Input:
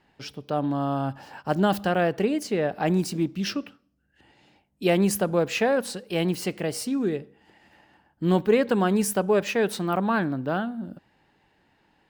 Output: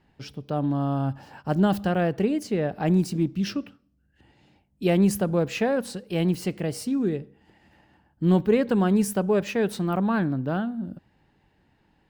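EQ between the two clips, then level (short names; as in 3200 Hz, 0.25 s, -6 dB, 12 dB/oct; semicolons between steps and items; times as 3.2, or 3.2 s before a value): low shelf 240 Hz +11.5 dB; -4.0 dB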